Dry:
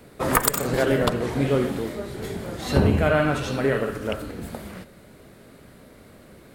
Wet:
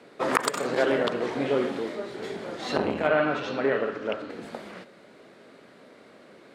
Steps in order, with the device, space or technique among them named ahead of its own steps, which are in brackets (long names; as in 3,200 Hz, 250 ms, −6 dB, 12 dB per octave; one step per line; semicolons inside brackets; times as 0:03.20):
0:03.07–0:04.30: high-frequency loss of the air 96 metres
public-address speaker with an overloaded transformer (saturating transformer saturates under 850 Hz; band-pass filter 290–5,200 Hz)